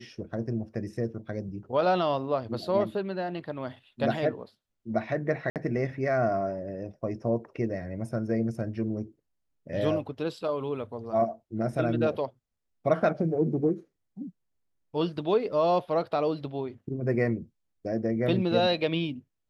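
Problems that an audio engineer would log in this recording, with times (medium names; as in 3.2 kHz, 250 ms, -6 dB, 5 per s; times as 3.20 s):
5.50–5.56 s: dropout 58 ms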